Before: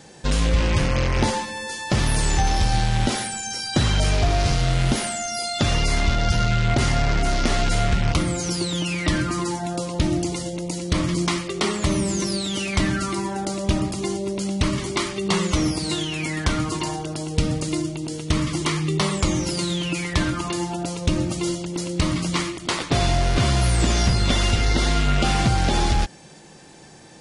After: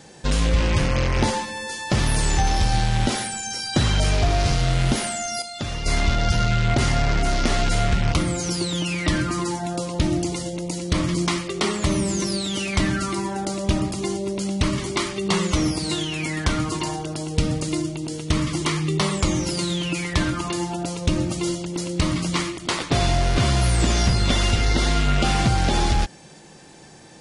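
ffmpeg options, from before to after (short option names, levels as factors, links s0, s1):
-filter_complex "[0:a]asplit=3[s0][s1][s2];[s0]atrim=end=5.422[s3];[s1]atrim=start=5.418:end=5.862,asetpts=PTS-STARTPTS,volume=0.398[s4];[s2]atrim=start=5.858[s5];[s3][s4]acrossfade=d=0.004:c1=hsin:c2=hsin[s6];[s6][s5]acrossfade=d=0.004:c1=hsin:c2=hsin"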